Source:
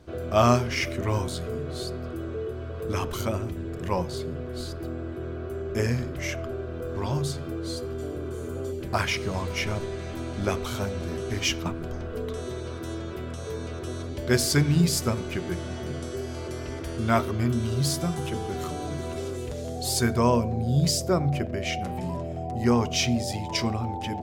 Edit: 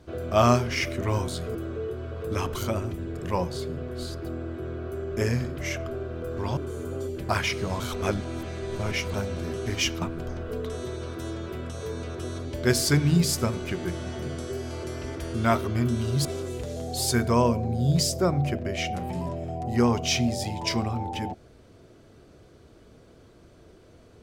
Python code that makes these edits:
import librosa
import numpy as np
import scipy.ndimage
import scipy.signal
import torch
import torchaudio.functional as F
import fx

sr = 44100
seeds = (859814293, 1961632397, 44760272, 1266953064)

y = fx.edit(x, sr, fx.cut(start_s=1.55, length_s=0.58),
    fx.cut(start_s=7.15, length_s=1.06),
    fx.reverse_span(start_s=9.44, length_s=1.34),
    fx.cut(start_s=17.89, length_s=1.24), tone=tone)